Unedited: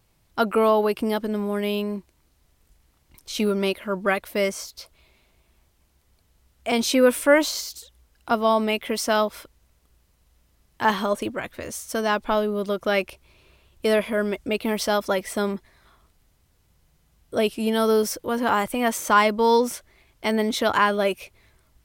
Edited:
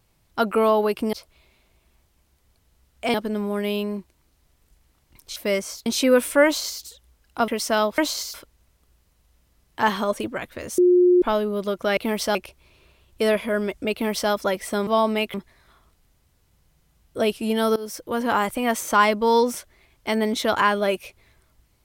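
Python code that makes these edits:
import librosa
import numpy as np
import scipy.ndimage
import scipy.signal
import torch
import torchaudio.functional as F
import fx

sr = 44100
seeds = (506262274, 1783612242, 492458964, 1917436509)

y = fx.edit(x, sr, fx.cut(start_s=3.35, length_s=0.91),
    fx.move(start_s=4.76, length_s=2.01, to_s=1.13),
    fx.duplicate(start_s=7.36, length_s=0.36, to_s=9.36),
    fx.move(start_s=8.39, length_s=0.47, to_s=15.51),
    fx.bleep(start_s=11.8, length_s=0.44, hz=358.0, db=-12.0),
    fx.duplicate(start_s=14.57, length_s=0.38, to_s=12.99),
    fx.fade_in_from(start_s=17.93, length_s=0.38, floor_db=-21.0), tone=tone)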